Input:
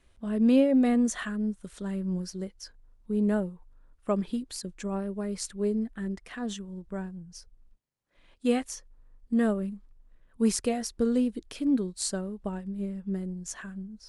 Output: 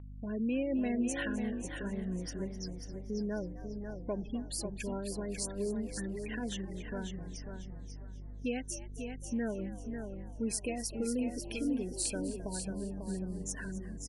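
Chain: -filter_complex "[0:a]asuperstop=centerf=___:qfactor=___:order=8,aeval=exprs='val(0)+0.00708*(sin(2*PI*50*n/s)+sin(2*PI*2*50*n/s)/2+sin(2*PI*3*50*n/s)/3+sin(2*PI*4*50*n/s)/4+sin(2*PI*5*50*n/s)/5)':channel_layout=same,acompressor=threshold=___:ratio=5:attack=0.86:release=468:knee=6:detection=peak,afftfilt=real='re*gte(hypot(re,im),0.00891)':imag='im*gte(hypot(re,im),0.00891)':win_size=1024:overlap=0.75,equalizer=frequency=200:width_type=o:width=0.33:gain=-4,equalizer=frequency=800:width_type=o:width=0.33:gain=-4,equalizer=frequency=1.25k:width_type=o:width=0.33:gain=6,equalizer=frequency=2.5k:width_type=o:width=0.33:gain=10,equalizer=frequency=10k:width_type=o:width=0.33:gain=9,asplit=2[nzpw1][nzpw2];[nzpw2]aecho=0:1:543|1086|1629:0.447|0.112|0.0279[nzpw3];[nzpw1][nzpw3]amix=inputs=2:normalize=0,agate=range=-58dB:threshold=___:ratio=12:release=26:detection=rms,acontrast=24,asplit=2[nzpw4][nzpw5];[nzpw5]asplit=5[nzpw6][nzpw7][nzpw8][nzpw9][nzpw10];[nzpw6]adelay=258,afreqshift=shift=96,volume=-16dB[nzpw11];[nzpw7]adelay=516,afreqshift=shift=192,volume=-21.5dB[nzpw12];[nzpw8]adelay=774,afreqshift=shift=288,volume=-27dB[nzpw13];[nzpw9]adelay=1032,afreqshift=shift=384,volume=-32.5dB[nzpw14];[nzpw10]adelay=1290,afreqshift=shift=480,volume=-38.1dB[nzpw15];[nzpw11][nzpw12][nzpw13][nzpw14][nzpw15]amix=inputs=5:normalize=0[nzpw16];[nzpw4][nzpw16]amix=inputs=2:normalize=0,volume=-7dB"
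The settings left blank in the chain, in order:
1200, 4.3, -26dB, -56dB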